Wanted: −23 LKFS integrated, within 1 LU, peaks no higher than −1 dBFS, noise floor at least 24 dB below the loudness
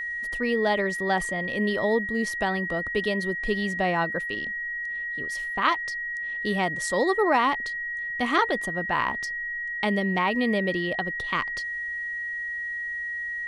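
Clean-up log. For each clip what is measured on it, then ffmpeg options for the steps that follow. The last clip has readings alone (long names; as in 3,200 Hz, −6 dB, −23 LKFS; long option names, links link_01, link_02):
interfering tone 1,900 Hz; level of the tone −29 dBFS; integrated loudness −26.0 LKFS; sample peak −7.5 dBFS; target loudness −23.0 LKFS
→ -af "bandreject=frequency=1900:width=30"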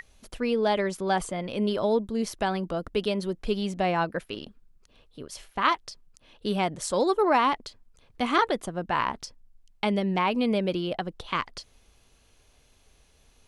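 interfering tone none found; integrated loudness −27.5 LKFS; sample peak −8.5 dBFS; target loudness −23.0 LKFS
→ -af "volume=4.5dB"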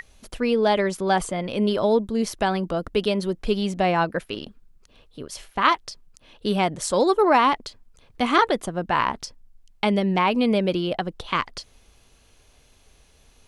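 integrated loudness −23.0 LKFS; sample peak −4.0 dBFS; background noise floor −57 dBFS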